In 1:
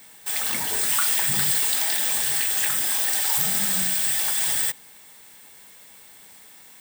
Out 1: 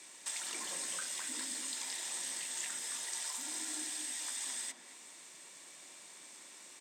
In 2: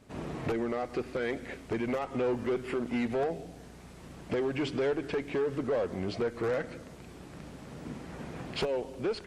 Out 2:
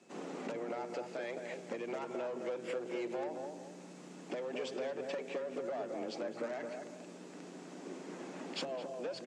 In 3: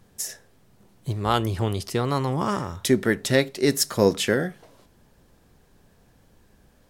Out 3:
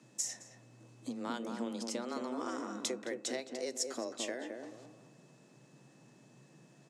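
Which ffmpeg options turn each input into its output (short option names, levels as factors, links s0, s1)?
-filter_complex "[0:a]acompressor=threshold=0.0251:ratio=6,afreqshift=120,lowpass=f=7200:t=q:w=2.4,aeval=exprs='val(0)+0.000398*sin(2*PI*2600*n/s)':c=same,asplit=2[s0][s1];[s1]adelay=216,lowpass=f=920:p=1,volume=0.708,asplit=2[s2][s3];[s3]adelay=216,lowpass=f=920:p=1,volume=0.37,asplit=2[s4][s5];[s5]adelay=216,lowpass=f=920:p=1,volume=0.37,asplit=2[s6][s7];[s7]adelay=216,lowpass=f=920:p=1,volume=0.37,asplit=2[s8][s9];[s9]adelay=216,lowpass=f=920:p=1,volume=0.37[s10];[s2][s4][s6][s8][s10]amix=inputs=5:normalize=0[s11];[s0][s11]amix=inputs=2:normalize=0,volume=0.531"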